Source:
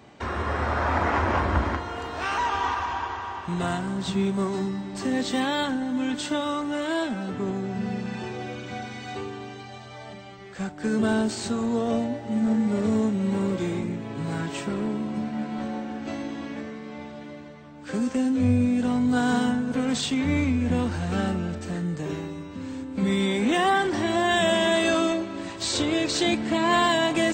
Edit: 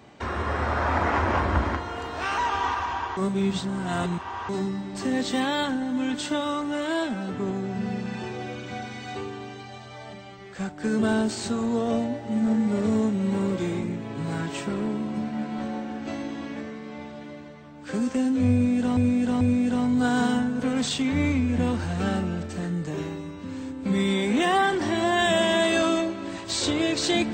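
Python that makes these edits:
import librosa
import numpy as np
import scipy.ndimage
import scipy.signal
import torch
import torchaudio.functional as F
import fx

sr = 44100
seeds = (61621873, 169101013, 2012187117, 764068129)

y = fx.edit(x, sr, fx.reverse_span(start_s=3.17, length_s=1.32),
    fx.repeat(start_s=18.53, length_s=0.44, count=3), tone=tone)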